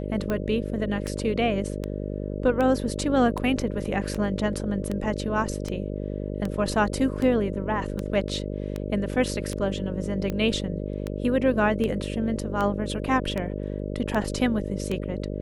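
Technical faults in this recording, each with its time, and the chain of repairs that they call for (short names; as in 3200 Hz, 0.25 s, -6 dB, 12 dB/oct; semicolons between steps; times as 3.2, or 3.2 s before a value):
buzz 50 Hz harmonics 12 -31 dBFS
tick 78 rpm -16 dBFS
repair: de-click; de-hum 50 Hz, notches 12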